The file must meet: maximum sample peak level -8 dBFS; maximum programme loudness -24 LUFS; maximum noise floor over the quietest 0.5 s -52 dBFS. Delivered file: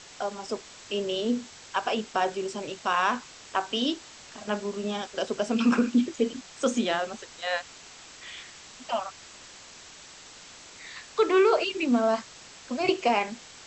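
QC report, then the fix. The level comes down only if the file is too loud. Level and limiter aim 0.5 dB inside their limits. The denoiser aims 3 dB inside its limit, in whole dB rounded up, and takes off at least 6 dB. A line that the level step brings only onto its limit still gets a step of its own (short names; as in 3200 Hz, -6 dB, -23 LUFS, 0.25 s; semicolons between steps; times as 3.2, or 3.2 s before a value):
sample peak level -11.5 dBFS: OK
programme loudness -28.0 LUFS: OK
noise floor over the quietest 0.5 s -48 dBFS: fail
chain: denoiser 7 dB, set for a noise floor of -48 dBFS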